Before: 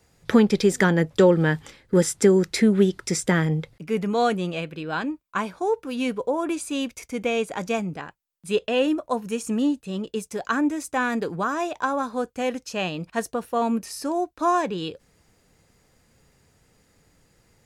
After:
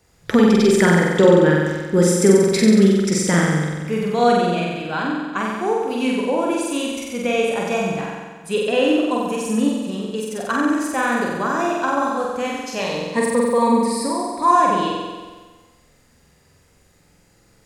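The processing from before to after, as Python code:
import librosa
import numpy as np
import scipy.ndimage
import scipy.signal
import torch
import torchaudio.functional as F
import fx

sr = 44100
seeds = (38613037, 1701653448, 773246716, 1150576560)

p1 = fx.ripple_eq(x, sr, per_octave=0.96, db=15, at=(12.8, 14.51))
p2 = p1 + fx.room_flutter(p1, sr, wall_m=7.9, rt60_s=1.4, dry=0)
y = p2 * 10.0 ** (1.0 / 20.0)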